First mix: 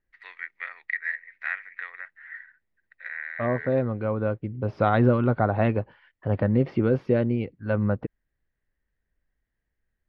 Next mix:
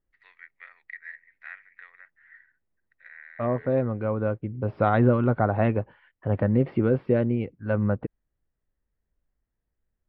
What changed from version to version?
first voice −11.5 dB
second voice: add moving average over 7 samples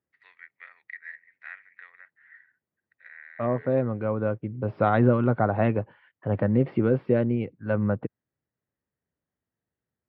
master: add high-pass filter 96 Hz 24 dB per octave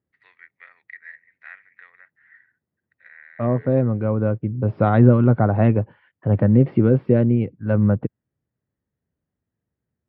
master: add low-shelf EQ 350 Hz +10.5 dB

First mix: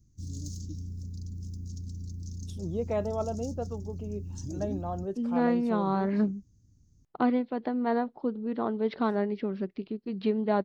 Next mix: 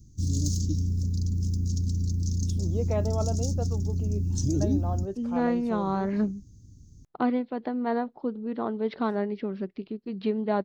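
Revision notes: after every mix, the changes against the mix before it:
background +11.5 dB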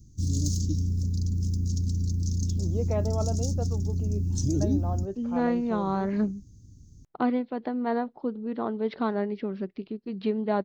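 first voice: add high-frequency loss of the air 170 metres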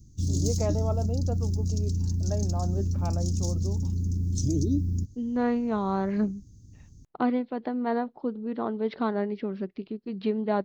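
first voice: entry −2.30 s

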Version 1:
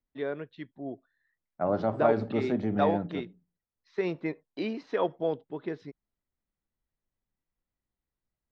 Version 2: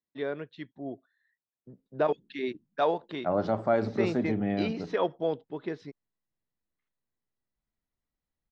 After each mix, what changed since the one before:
second voice: entry +1.65 s
master: add high-shelf EQ 4,400 Hz +8.5 dB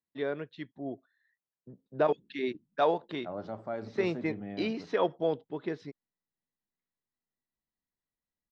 second voice −11.5 dB

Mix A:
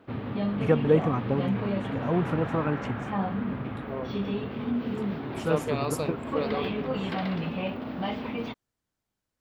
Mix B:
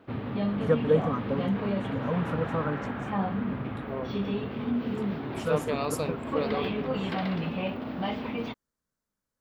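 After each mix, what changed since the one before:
first voice: add phaser with its sweep stopped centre 520 Hz, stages 8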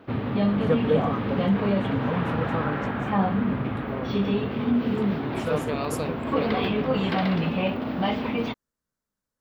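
background +6.0 dB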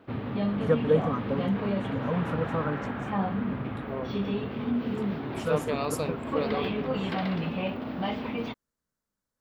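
background −5.5 dB

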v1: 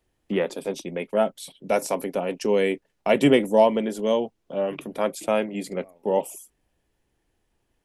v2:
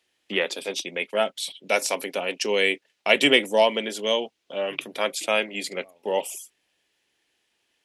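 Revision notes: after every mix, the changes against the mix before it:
first voice: add meter weighting curve D
master: add low-shelf EQ 250 Hz −11 dB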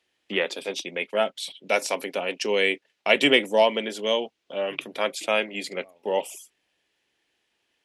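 first voice: add high-shelf EQ 5,600 Hz −7 dB

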